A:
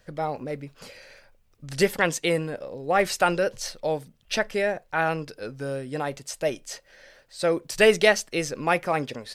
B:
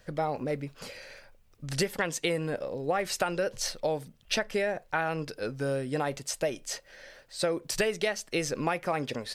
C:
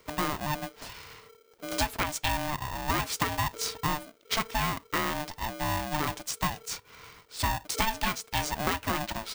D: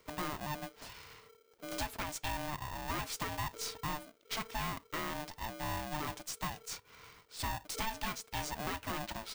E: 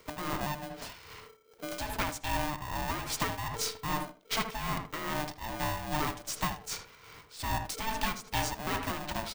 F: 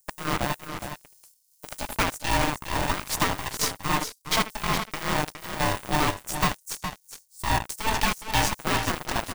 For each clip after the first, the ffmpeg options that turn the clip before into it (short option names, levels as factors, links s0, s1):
-af "acompressor=threshold=0.0501:ratio=16,volume=1.19"
-af "aeval=exprs='val(0)*sgn(sin(2*PI*450*n/s))':c=same"
-af "aeval=exprs='(tanh(20*val(0)+0.3)-tanh(0.3))/20':c=same,volume=0.531"
-filter_complex "[0:a]asplit=2[s0][s1];[s1]adelay=78,lowpass=f=1800:p=1,volume=0.501,asplit=2[s2][s3];[s3]adelay=78,lowpass=f=1800:p=1,volume=0.28,asplit=2[s4][s5];[s5]adelay=78,lowpass=f=1800:p=1,volume=0.28,asplit=2[s6][s7];[s7]adelay=78,lowpass=f=1800:p=1,volume=0.28[s8];[s0][s2][s4][s6][s8]amix=inputs=5:normalize=0,tremolo=f=2.5:d=0.62,volume=2.37"
-filter_complex "[0:a]acrossover=split=7400[s0][s1];[s0]acrusher=bits=4:mix=0:aa=0.5[s2];[s2][s1]amix=inputs=2:normalize=0,aecho=1:1:414:0.376,volume=2.37"